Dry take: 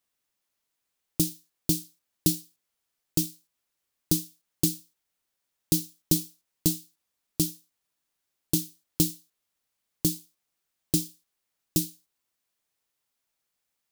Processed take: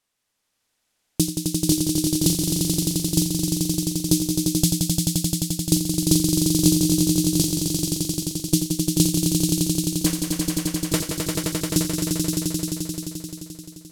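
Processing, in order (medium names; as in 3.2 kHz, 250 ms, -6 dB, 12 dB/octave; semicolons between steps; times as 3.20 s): 10.06–11.00 s: self-modulated delay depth 0.95 ms; low-pass 11 kHz 12 dB/octave; on a send: echo with a slow build-up 87 ms, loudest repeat 5, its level -4.5 dB; on the sum: trim +5.5 dB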